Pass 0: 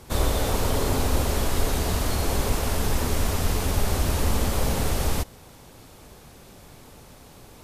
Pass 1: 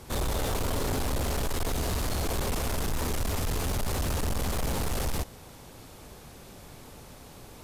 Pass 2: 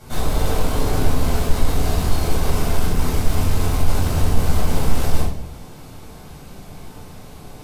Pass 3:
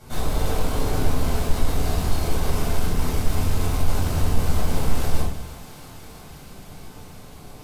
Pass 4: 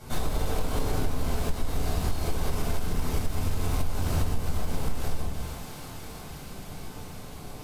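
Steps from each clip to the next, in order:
soft clipping −25 dBFS, distortion −9 dB
rectangular room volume 930 cubic metres, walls furnished, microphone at 7.4 metres; level −3 dB
feedback echo with a high-pass in the loop 330 ms, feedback 84%, high-pass 510 Hz, level −15.5 dB; level −3.5 dB
downward compressor, threshold −22 dBFS, peak gain reduction 12 dB; level +1 dB

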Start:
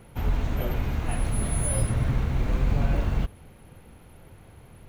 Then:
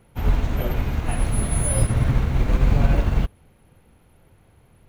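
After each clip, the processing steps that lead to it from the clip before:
expander for the loud parts 1.5 to 1, over −44 dBFS
level +7 dB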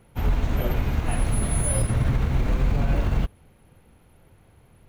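brickwall limiter −13.5 dBFS, peak gain reduction 8.5 dB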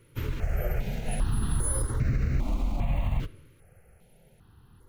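downward compressor 2.5 to 1, threshold −23 dBFS, peak gain reduction 5 dB
on a send at −16.5 dB: convolution reverb RT60 1.1 s, pre-delay 5 ms
on the sum: step-sequenced phaser 2.5 Hz 200–3,300 Hz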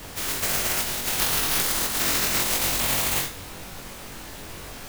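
compressing power law on the bin magnitudes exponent 0.12
background noise pink −40 dBFS
on a send: flutter between parallel walls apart 3.7 metres, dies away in 0.24 s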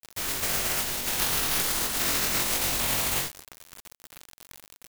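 bit reduction 5 bits
level −3 dB

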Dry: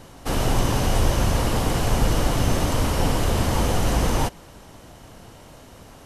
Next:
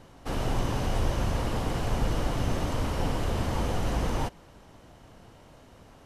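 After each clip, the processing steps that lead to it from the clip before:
high-shelf EQ 6,000 Hz −9.5 dB
level −7 dB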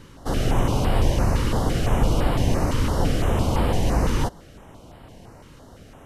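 notch on a step sequencer 5.9 Hz 700–6,200 Hz
level +7.5 dB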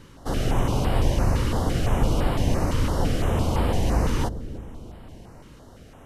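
bucket-brigade delay 309 ms, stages 1,024, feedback 51%, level −11 dB
level −2 dB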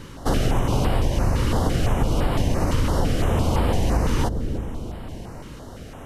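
downward compressor, threshold −25 dBFS, peak gain reduction 10 dB
level +8.5 dB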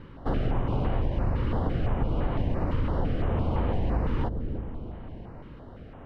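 high-frequency loss of the air 430 metres
level −5.5 dB

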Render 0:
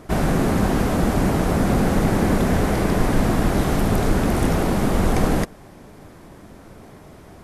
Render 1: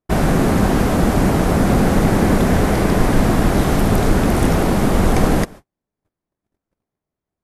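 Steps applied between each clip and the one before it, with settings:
noise gate −36 dBFS, range −46 dB
level +4 dB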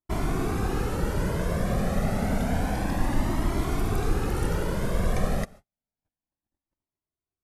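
flanger whose copies keep moving one way rising 0.29 Hz
level −7.5 dB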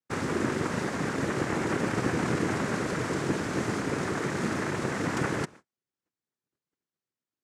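cochlear-implant simulation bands 3

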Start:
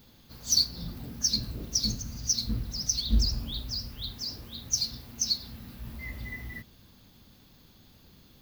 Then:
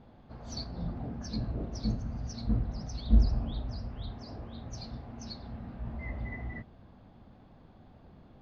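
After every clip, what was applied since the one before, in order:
low-pass filter 1,400 Hz 12 dB per octave
parametric band 700 Hz +8.5 dB 0.59 octaves
level +2.5 dB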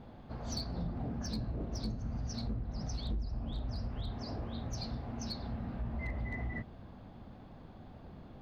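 downward compressor 4 to 1, threshold −38 dBFS, peak gain reduction 18.5 dB
gain into a clipping stage and back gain 34.5 dB
level +4 dB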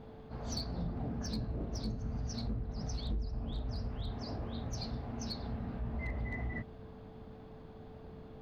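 steady tone 440 Hz −54 dBFS
level that may rise only so fast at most 170 dB per second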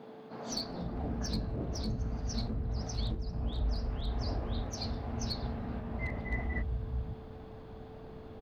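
multiband delay without the direct sound highs, lows 510 ms, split 170 Hz
level +4 dB

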